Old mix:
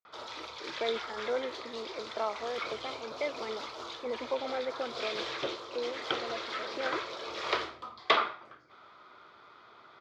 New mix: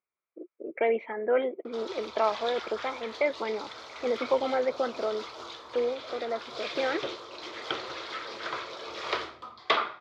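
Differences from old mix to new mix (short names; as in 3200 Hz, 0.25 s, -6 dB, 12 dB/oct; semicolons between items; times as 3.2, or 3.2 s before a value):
speech +7.5 dB; background: entry +1.60 s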